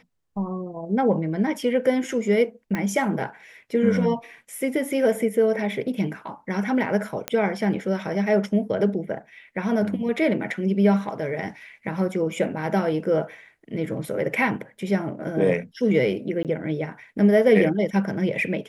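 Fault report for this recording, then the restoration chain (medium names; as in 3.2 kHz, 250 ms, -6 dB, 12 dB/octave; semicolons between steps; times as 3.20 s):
2.75 s: pop -14 dBFS
7.28 s: pop -9 dBFS
16.43–16.45 s: dropout 18 ms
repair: de-click; interpolate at 16.43 s, 18 ms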